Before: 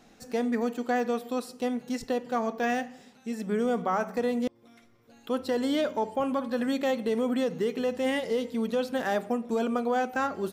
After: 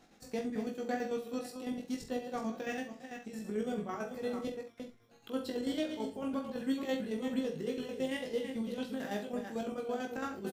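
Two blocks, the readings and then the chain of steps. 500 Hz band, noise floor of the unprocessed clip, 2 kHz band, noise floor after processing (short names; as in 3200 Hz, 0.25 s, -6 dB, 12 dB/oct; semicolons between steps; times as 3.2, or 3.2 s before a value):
-9.0 dB, -59 dBFS, -9.5 dB, -61 dBFS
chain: reverse delay 0.244 s, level -8 dB; dynamic EQ 1000 Hz, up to -8 dB, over -42 dBFS, Q 0.86; chopper 9 Hz, depth 60%, duty 50%; doubler 19 ms -3.5 dB; early reflections 45 ms -9 dB, 70 ms -14 dB; gain -6 dB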